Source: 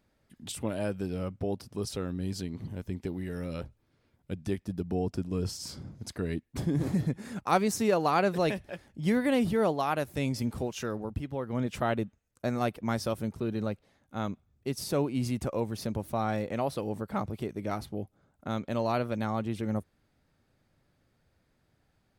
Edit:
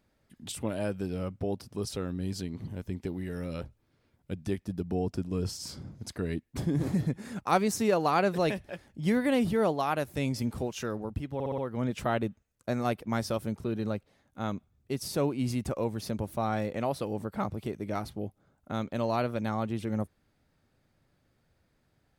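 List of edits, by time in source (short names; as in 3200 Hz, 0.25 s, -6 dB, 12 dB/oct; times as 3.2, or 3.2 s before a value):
11.34 stutter 0.06 s, 5 plays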